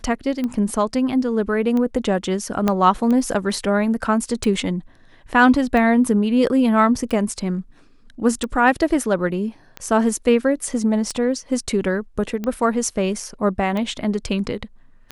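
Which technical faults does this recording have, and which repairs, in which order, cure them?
tick 45 rpm -14 dBFS
2.68 pop -6 dBFS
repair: de-click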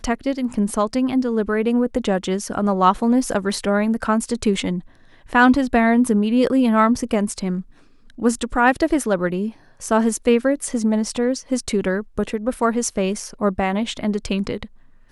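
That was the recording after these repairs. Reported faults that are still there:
2.68 pop

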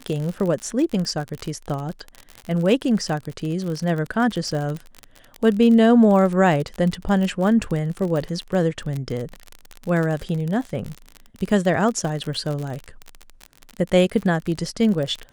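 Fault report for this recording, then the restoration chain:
crackle 43/s -25 dBFS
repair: de-click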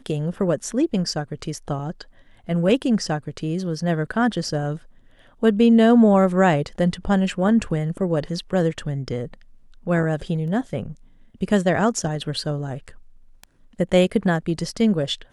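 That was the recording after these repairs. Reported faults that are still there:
none

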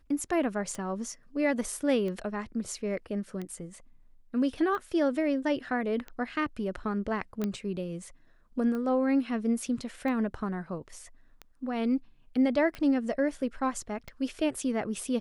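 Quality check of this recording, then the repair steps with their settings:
tick 45 rpm -25 dBFS
7.44 pop -18 dBFS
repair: de-click

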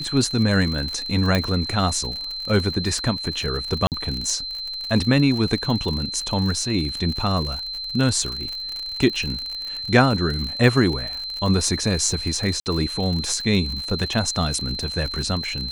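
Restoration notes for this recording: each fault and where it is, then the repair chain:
crackle 57/s -26 dBFS
tone 4100 Hz -28 dBFS
1.35 pop
3.87–3.92 gap 48 ms
12.6–12.66 gap 59 ms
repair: de-click; notch 4100 Hz, Q 30; interpolate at 3.87, 48 ms; interpolate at 12.6, 59 ms

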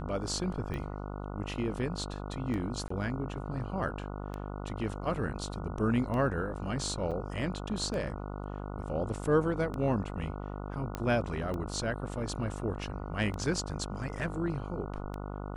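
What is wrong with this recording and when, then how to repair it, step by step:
buzz 50 Hz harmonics 29 -39 dBFS
tick 33 1/3 rpm -25 dBFS
2.88–2.9 gap 24 ms
7.11–7.12 gap 6.5 ms
10.95 pop -20 dBFS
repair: de-click; de-hum 50 Hz, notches 29; interpolate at 2.88, 24 ms; interpolate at 7.11, 6.5 ms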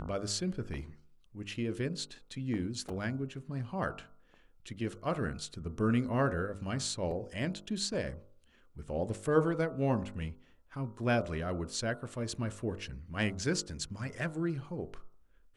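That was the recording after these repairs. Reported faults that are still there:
none

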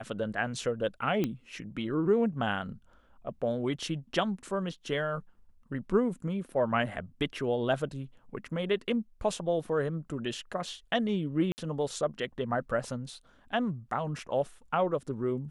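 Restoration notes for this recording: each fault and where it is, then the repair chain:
1.24 pop -17 dBFS
11.52–11.58 gap 59 ms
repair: de-click; interpolate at 11.52, 59 ms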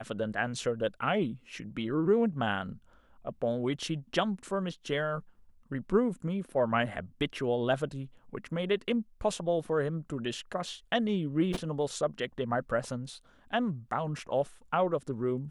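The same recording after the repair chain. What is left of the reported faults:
none

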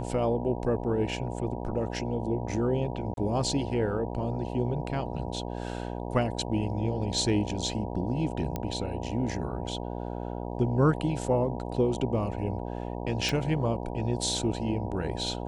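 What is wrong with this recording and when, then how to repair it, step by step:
buzz 60 Hz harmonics 16 -35 dBFS
3.14–3.17 gap 32 ms
8.56 pop -17 dBFS
13.29 pop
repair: de-click; de-hum 60 Hz, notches 16; interpolate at 3.14, 32 ms

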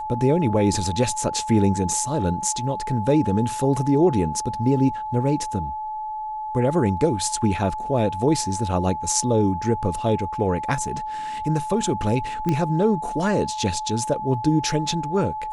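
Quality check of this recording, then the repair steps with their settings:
tone 860 Hz -27 dBFS
12.49 pop -11 dBFS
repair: de-click; notch 860 Hz, Q 30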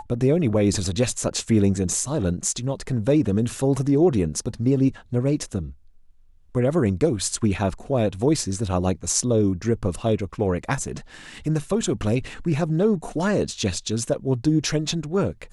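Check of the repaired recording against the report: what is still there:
12.49 pop

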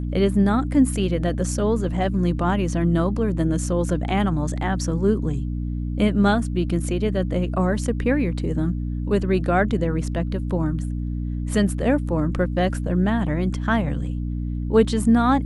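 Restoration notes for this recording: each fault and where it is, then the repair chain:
hum 60 Hz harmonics 5 -26 dBFS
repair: de-hum 60 Hz, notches 5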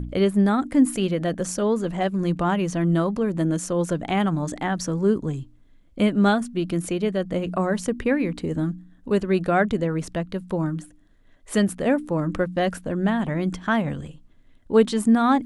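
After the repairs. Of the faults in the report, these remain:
none

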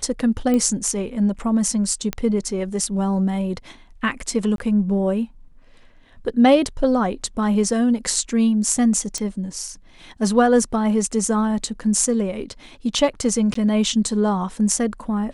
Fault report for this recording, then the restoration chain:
0.54 pop -11 dBFS
2.13 pop -9 dBFS
4.56–4.58 gap 22 ms
9.18 pop -13 dBFS
13.54–13.55 gap 14 ms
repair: de-click; interpolate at 4.56, 22 ms; interpolate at 13.54, 14 ms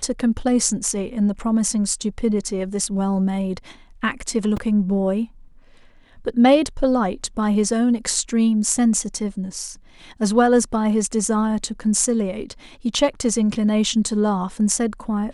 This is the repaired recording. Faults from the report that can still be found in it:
none

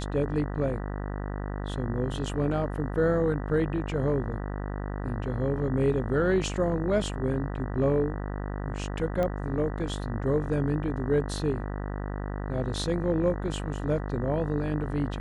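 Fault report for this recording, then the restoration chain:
buzz 50 Hz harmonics 39 -33 dBFS
9.23 pop -18 dBFS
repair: de-click; de-hum 50 Hz, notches 39

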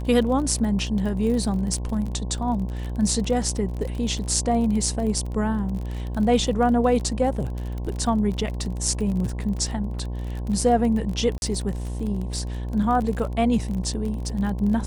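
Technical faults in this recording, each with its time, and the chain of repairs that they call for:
buzz 60 Hz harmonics 18 -29 dBFS
crackle 34/s -29 dBFS
11.38–11.42 gap 41 ms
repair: de-click; de-hum 60 Hz, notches 18; interpolate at 11.38, 41 ms

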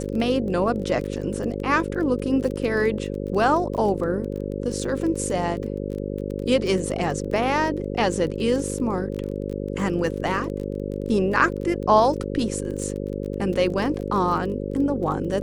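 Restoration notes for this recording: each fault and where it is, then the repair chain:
buzz 50 Hz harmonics 11 -29 dBFS
crackle 23/s -30 dBFS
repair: de-click; de-hum 50 Hz, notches 11

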